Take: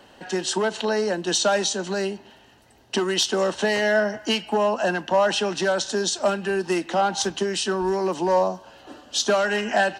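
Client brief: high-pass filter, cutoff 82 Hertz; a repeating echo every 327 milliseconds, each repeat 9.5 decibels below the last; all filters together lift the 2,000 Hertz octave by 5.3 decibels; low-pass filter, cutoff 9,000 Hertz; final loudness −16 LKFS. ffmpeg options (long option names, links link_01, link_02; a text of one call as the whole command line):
ffmpeg -i in.wav -af "highpass=82,lowpass=9000,equalizer=frequency=2000:width_type=o:gain=7,aecho=1:1:327|654|981|1308:0.335|0.111|0.0365|0.012,volume=5.5dB" out.wav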